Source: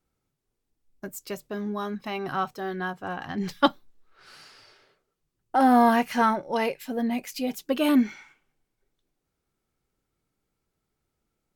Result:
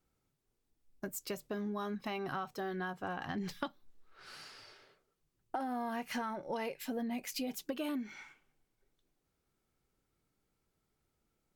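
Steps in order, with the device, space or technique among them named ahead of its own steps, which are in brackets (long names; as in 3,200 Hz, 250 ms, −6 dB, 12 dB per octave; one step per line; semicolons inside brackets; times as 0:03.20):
serial compression, peaks first (downward compressor, threshold −27 dBFS, peak gain reduction 13 dB; downward compressor 3 to 1, threshold −35 dBFS, peak gain reduction 9 dB)
level −1.5 dB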